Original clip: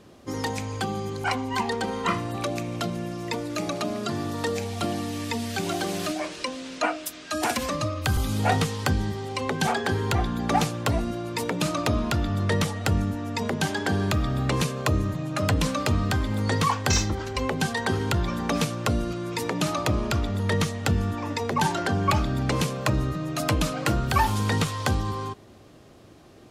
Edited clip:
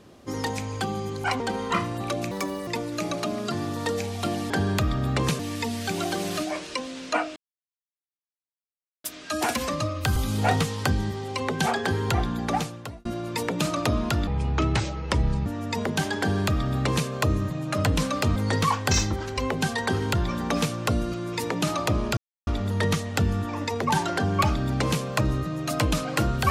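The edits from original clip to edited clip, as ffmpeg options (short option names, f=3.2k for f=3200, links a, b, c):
-filter_complex "[0:a]asplit=12[a][b][c][d][e][f][g][h][i][j][k][l];[a]atrim=end=1.402[m];[b]atrim=start=1.738:end=2.654[n];[c]atrim=start=2.65:end=3.25,asetpts=PTS-STARTPTS,asetrate=73206,aresample=44100[o];[d]atrim=start=3.246:end=5.082[p];[e]atrim=start=13.828:end=14.722[q];[f]atrim=start=5.078:end=7.05,asetpts=PTS-STARTPTS,afade=t=out:st=1.968:d=0.004:c=hsin,apad=pad_dur=1.68[r];[g]atrim=start=7.05:end=11.06,asetpts=PTS-STARTPTS,afade=t=in:d=0.004:c=hsin,afade=t=out:st=3.27:d=0.74[s];[h]atrim=start=11.06:end=12.284,asetpts=PTS-STARTPTS,afade=t=in:d=0.004:c=hsin[t];[i]atrim=start=12.28:end=13.1,asetpts=PTS-STARTPTS,asetrate=30429,aresample=44100[u];[j]atrim=start=13.096:end=16.002[v];[k]atrim=start=16.348:end=20.16,asetpts=PTS-STARTPTS,afade=t=out:st=3.808:d=0.004:c=hsin,apad=pad_dur=0.3[w];[l]atrim=start=20.16,asetpts=PTS-STARTPTS,afade=t=in:d=0.004:c=hsin[x];[m][n]acrossfade=d=0.004:c1=hsin:c2=hsin[y];[y][o]acrossfade=d=0.004:c1=hsin:c2=hsin[z];[z][p]acrossfade=d=0.004:c1=hsin:c2=hsin[aa];[aa][q]acrossfade=d=0.004:c1=hsin:c2=hsin[ab];[r][s][t]concat=n=3:v=0:a=1[ac];[ab][ac]acrossfade=d=0.004:c1=hsin:c2=hsin[ad];[ad][u]acrossfade=d=0.004:c1=hsin:c2=hsin[ae];[ae][v]acrossfade=d=0.004:c1=hsin:c2=hsin[af];[w][x]concat=n=2:v=0:a=1[ag];[af][ag]acrossfade=d=0.004:c1=hsin:c2=hsin"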